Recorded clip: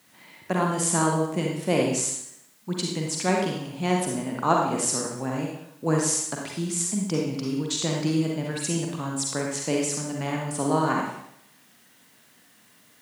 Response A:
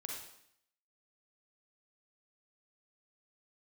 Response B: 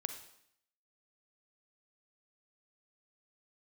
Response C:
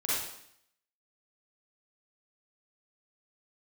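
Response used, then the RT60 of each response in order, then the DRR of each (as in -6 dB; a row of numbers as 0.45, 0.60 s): A; 0.70, 0.70, 0.70 s; -1.5, 7.0, -9.0 dB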